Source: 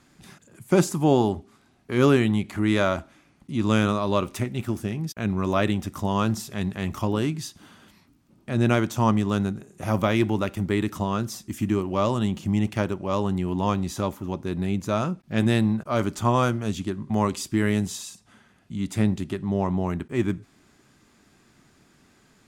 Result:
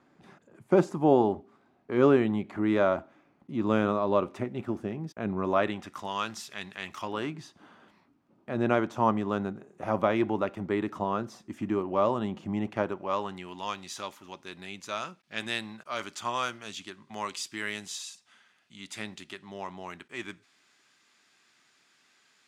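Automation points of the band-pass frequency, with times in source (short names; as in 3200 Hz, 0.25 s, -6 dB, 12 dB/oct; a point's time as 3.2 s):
band-pass, Q 0.67
5.41 s 590 Hz
6.15 s 2600 Hz
6.97 s 2600 Hz
7.41 s 730 Hz
12.8 s 730 Hz
13.6 s 3300 Hz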